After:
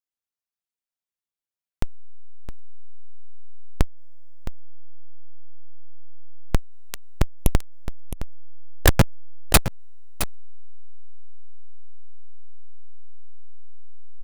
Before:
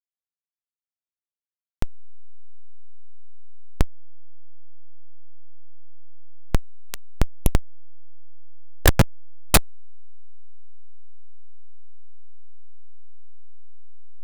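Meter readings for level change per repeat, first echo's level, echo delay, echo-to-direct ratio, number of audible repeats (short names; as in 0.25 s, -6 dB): no steady repeat, -12.0 dB, 0.665 s, -12.0 dB, 1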